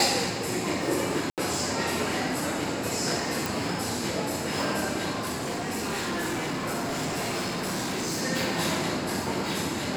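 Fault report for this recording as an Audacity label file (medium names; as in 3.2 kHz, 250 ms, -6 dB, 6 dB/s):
1.300000	1.380000	dropout 78 ms
3.460000	3.460000	pop
5.190000	8.230000	clipped -26.5 dBFS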